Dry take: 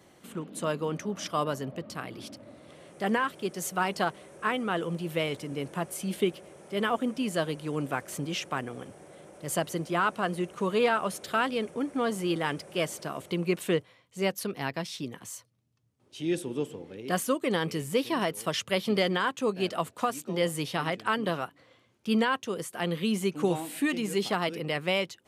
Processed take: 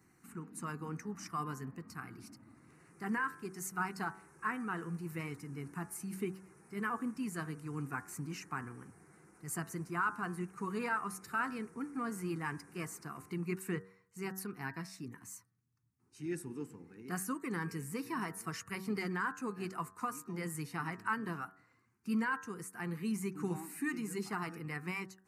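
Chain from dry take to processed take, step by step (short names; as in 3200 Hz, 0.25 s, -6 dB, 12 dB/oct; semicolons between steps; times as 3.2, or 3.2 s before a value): bin magnitudes rounded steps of 15 dB; fixed phaser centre 1400 Hz, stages 4; de-hum 94.79 Hz, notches 20; gain -5 dB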